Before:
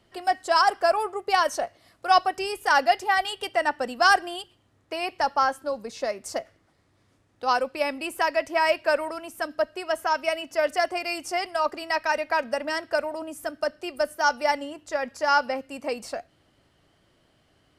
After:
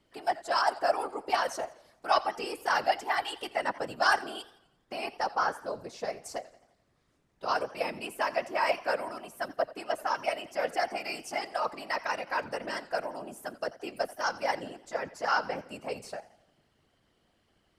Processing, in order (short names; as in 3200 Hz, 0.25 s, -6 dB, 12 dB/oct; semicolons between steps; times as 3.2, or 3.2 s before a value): whisperiser; warbling echo 86 ms, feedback 51%, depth 122 cents, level -18.5 dB; gain -6.5 dB